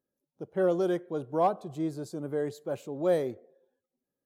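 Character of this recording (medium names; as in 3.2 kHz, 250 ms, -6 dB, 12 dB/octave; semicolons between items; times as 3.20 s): noise floor -89 dBFS; spectral tilt -4.5 dB/octave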